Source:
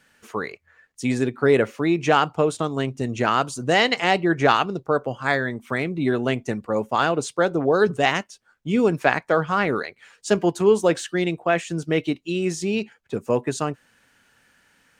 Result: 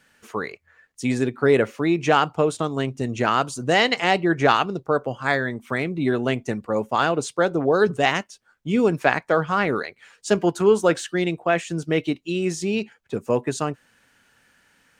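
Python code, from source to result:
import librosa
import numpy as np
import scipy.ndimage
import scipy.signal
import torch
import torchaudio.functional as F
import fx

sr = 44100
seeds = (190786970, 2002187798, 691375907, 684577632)

y = fx.peak_eq(x, sr, hz=1400.0, db=9.0, octaves=0.31, at=(10.47, 10.94))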